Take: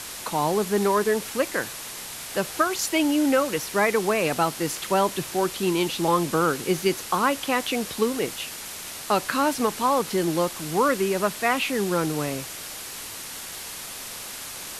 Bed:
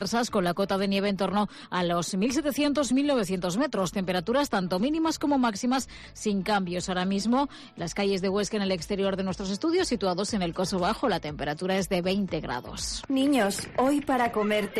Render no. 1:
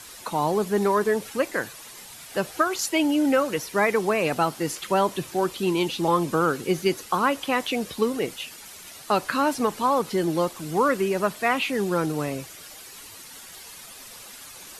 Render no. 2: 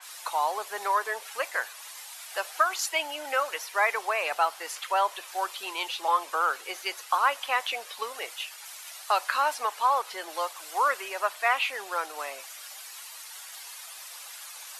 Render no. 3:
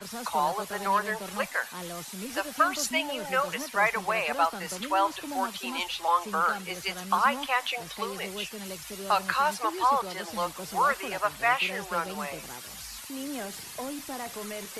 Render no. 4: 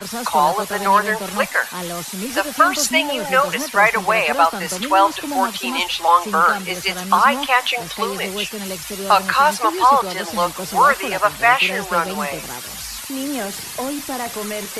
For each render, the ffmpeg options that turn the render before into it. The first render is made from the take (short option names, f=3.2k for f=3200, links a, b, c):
-af "afftdn=nr=10:nf=-37"
-af "highpass=f=690:w=0.5412,highpass=f=690:w=1.3066,adynamicequalizer=threshold=0.00794:dfrequency=3900:dqfactor=0.7:tfrequency=3900:tqfactor=0.7:attack=5:release=100:ratio=0.375:range=2.5:mode=cutabove:tftype=highshelf"
-filter_complex "[1:a]volume=-13dB[a];[0:a][a]amix=inputs=2:normalize=0"
-af "volume=11dB,alimiter=limit=-2dB:level=0:latency=1"